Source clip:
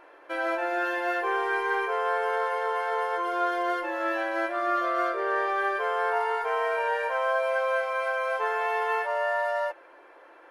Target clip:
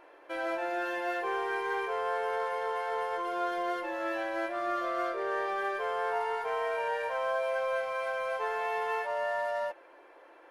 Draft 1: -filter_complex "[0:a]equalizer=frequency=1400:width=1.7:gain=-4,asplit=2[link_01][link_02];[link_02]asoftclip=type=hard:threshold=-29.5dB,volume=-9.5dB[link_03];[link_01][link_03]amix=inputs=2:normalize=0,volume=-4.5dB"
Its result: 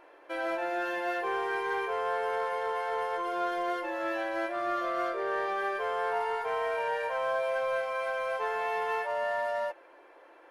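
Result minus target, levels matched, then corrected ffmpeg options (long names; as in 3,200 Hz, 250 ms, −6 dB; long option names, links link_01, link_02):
hard clipping: distortion −4 dB
-filter_complex "[0:a]equalizer=frequency=1400:width=1.7:gain=-4,asplit=2[link_01][link_02];[link_02]asoftclip=type=hard:threshold=-38dB,volume=-9.5dB[link_03];[link_01][link_03]amix=inputs=2:normalize=0,volume=-4.5dB"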